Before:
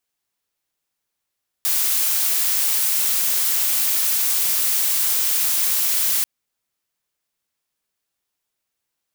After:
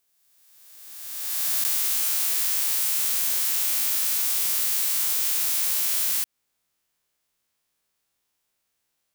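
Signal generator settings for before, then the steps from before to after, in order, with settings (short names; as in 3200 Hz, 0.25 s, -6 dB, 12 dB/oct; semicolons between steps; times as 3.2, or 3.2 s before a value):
noise blue, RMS -19.5 dBFS 4.59 s
spectral swells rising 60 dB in 1.76 s; compressor, threshold -21 dBFS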